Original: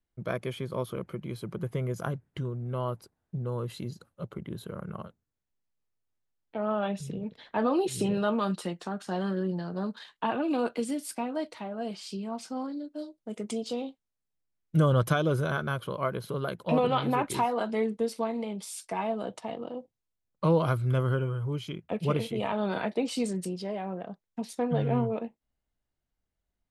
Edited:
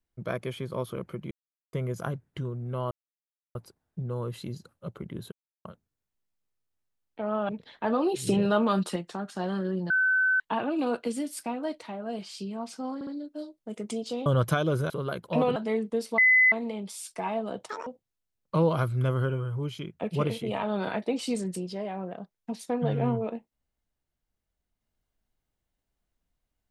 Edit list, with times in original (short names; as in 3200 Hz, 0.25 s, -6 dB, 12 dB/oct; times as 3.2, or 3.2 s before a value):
1.31–1.73 mute
2.91 insert silence 0.64 s
4.68–5.01 mute
6.85–7.21 cut
7.99–8.68 gain +3.5 dB
9.62–10.12 bleep 1520 Hz -20.5 dBFS
12.67 stutter 0.06 s, 3 plays
13.86–14.85 cut
15.49–16.26 cut
16.92–17.63 cut
18.25 add tone 2020 Hz -16 dBFS 0.34 s
19.42–19.76 speed 192%